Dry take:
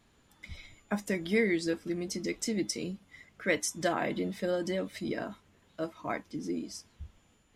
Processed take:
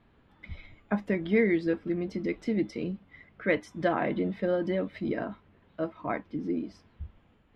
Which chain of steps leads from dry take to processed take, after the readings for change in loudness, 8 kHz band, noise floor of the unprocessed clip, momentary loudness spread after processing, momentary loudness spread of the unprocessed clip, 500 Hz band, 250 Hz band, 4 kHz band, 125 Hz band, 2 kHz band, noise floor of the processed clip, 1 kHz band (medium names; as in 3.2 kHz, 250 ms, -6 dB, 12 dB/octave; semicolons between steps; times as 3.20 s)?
+3.0 dB, under -20 dB, -66 dBFS, 20 LU, 19 LU, +3.5 dB, +4.0 dB, -8.0 dB, +4.0 dB, +0.5 dB, -63 dBFS, +3.0 dB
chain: distance through air 410 m; trim +4.5 dB